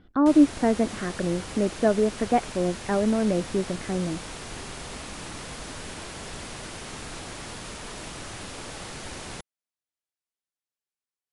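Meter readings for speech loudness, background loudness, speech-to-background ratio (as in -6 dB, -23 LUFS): -24.5 LUFS, -37.5 LUFS, 13.0 dB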